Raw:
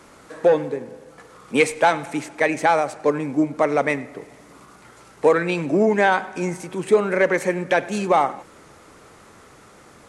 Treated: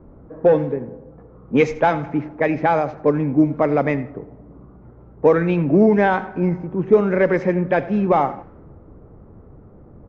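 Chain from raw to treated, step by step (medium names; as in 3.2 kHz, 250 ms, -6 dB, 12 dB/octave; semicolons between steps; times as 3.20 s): knee-point frequency compression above 3.5 kHz 1.5:1; level-controlled noise filter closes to 630 Hz, open at -12.5 dBFS; RIAA curve playback; feedback delay 85 ms, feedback 26%, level -19 dB; trim -1 dB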